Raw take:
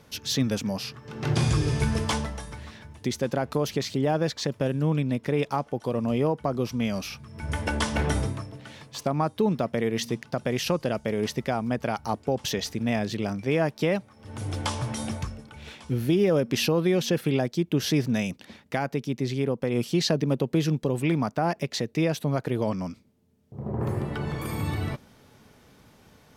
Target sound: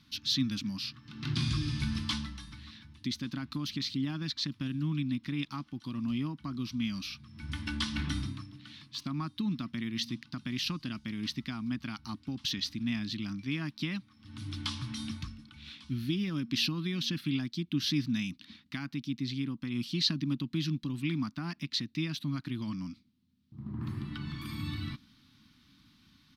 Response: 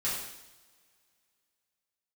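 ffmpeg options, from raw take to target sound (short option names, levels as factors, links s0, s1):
-af "firequalizer=gain_entry='entry(120,0);entry(290,5);entry(450,-28);entry(760,-17);entry(1100,-1);entry(1700,-1);entry(4000,11);entry(7000,-6);entry(12000,-4)':delay=0.05:min_phase=1,volume=0.376"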